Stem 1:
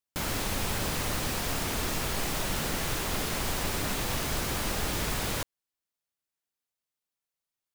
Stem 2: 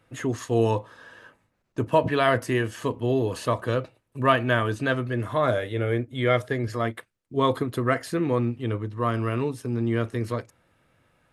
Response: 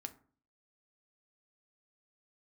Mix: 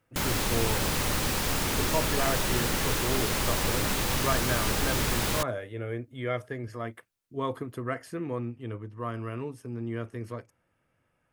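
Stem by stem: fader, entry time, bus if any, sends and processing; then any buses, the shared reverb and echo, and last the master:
+3.0 dB, 0.00 s, no send, band-stop 680 Hz, Q 12
-9.0 dB, 0.00 s, no send, peaking EQ 3.9 kHz -11 dB 0.28 oct; band-stop 7.2 kHz, Q 17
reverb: none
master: none

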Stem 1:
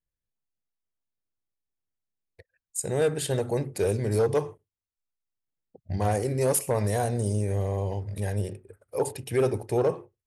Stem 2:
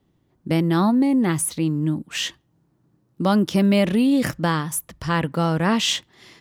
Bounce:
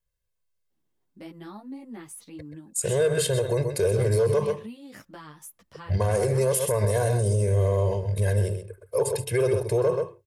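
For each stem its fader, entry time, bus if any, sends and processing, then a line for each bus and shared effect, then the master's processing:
+2.5 dB, 0.00 s, no send, echo send -10 dB, comb 1.9 ms, depth 92%
-13.0 dB, 0.70 s, no send, no echo send, high-pass 210 Hz 6 dB/octave; compression 5:1, threshold -22 dBFS, peak gain reduction 6.5 dB; three-phase chorus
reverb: none
echo: delay 129 ms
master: peak limiter -14.5 dBFS, peak gain reduction 8 dB

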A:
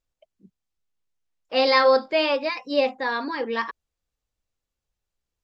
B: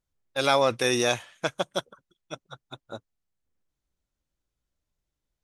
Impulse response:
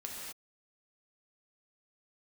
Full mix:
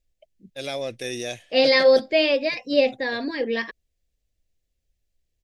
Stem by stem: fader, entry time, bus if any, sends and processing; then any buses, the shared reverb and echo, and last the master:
+2.5 dB, 0.00 s, no send, bass shelf 78 Hz +9.5 dB
-6.5 dB, 0.20 s, no send, none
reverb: none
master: high-order bell 1.1 kHz -14 dB 1 oct

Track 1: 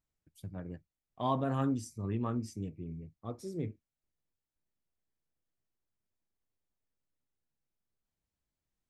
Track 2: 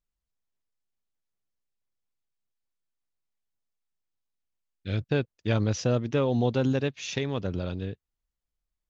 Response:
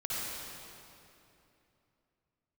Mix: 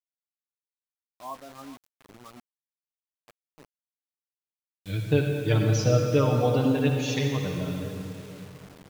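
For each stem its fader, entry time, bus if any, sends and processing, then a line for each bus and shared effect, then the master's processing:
-3.5 dB, 0.00 s, no send, echo send -16 dB, high-pass 750 Hz 6 dB/octave; spectral contrast expander 1.5:1
-1.5 dB, 0.00 s, send -3.5 dB, no echo send, expander on every frequency bin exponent 1.5; bass shelf 100 Hz -2 dB; comb 6.6 ms, depth 74%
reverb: on, RT60 2.9 s, pre-delay 51 ms
echo: delay 417 ms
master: bit crusher 8-bit

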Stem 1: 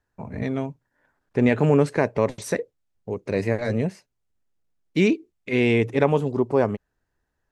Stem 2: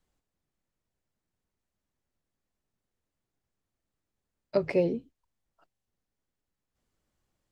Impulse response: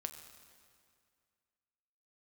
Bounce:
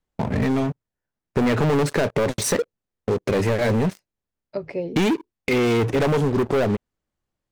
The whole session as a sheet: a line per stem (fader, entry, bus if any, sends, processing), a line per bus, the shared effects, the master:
-5.5 dB, 0.00 s, no send, gate -45 dBFS, range -10 dB; waveshaping leveller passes 5
-2.5 dB, 0.00 s, no send, treble shelf 4.6 kHz -5.5 dB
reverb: none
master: compression, threshold -18 dBFS, peak gain reduction 5.5 dB

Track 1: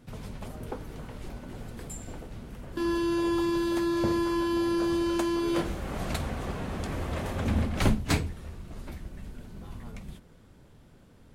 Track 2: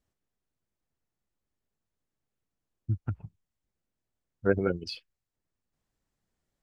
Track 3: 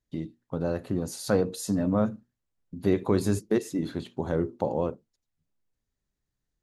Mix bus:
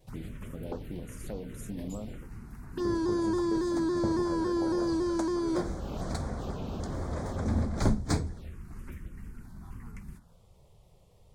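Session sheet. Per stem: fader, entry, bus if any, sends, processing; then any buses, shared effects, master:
-1.5 dB, 0.00 s, no send, vibrato with a chosen wave saw down 3.6 Hz, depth 100 cents
-9.0 dB, 0.00 s, no send, compression, threshold -29 dBFS, peak gain reduction 11 dB
-8.5 dB, 0.00 s, no send, compression 6:1, threshold -26 dBFS, peak gain reduction 8.5 dB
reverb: none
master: touch-sensitive phaser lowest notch 220 Hz, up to 2.8 kHz, full sweep at -30 dBFS

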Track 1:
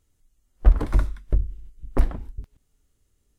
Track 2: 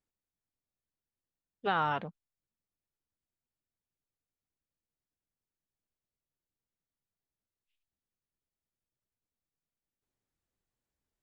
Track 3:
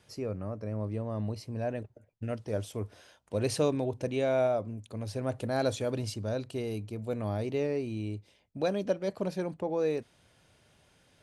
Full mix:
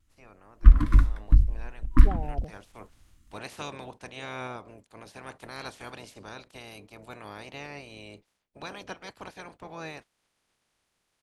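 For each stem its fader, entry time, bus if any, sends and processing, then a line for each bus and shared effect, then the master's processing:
+0.5 dB, 0.00 s, no send, FFT band-reject 340–970 Hz
-5.5 dB, 0.40 s, no send, elliptic low-pass 760 Hz
-18.5 dB, 0.00 s, no send, spectral peaks clipped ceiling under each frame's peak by 28 dB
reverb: none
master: treble shelf 3.9 kHz -7 dB; level rider gain up to 9 dB; vibrato 0.44 Hz 11 cents

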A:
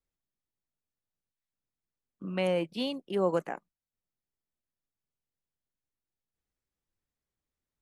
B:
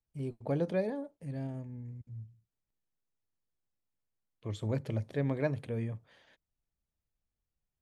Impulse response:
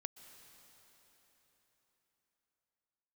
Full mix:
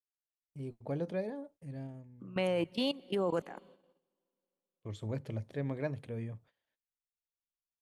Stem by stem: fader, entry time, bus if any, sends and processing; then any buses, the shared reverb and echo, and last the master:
+2.0 dB, 0.00 s, send -10.5 dB, level held to a coarse grid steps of 17 dB
-4.5 dB, 0.40 s, no send, auto duck -9 dB, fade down 0.40 s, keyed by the first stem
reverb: on, RT60 4.3 s, pre-delay 112 ms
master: gate -59 dBFS, range -20 dB

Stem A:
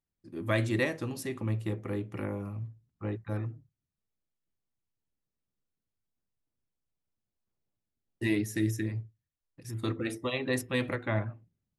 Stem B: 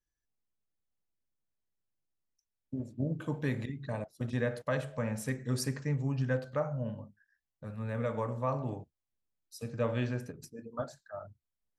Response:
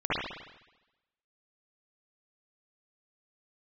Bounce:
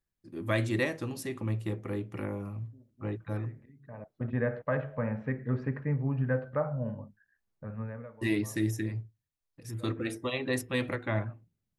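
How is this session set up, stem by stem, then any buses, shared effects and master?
-0.5 dB, 0.00 s, no send, none
+2.0 dB, 0.00 s, no send, low-pass 2.1 kHz 24 dB/octave; auto duck -23 dB, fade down 0.40 s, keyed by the first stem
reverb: none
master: none

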